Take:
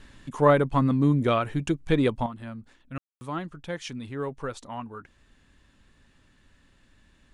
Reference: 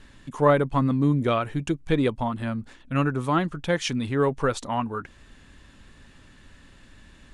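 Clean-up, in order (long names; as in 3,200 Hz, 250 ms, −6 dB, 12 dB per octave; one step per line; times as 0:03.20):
ambience match 0:02.98–0:03.21
level 0 dB, from 0:02.26 +9.5 dB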